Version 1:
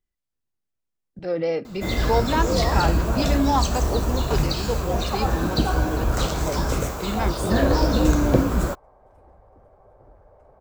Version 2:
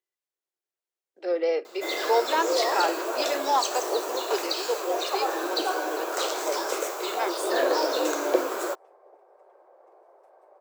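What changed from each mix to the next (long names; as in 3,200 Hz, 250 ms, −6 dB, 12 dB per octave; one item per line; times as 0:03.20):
second sound: entry +2.25 s
master: add Chebyshev high-pass filter 350 Hz, order 5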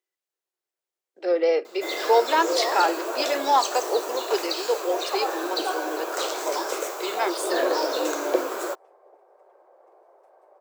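speech +4.0 dB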